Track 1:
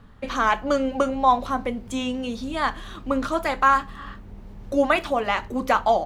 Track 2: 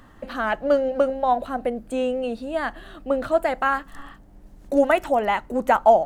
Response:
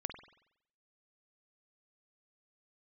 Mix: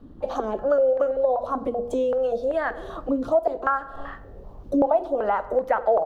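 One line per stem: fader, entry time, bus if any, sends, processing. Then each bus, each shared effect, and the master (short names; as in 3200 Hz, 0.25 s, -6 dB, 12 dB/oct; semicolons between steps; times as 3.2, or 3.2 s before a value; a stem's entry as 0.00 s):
-5.0 dB, 0.00 s, no send, limiter -17 dBFS, peak gain reduction 11 dB
+1.5 dB, 13 ms, polarity flipped, send -6.5 dB, notches 60/120/180/240/300/360/420/480 Hz; stepped low-pass 5.2 Hz 280–1900 Hz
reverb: on, RT60 0.75 s, pre-delay 46 ms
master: graphic EQ 250/500/2000/8000 Hz -6/+6/-10/-4 dB; compressor 2.5:1, threshold -24 dBFS, peak gain reduction 15 dB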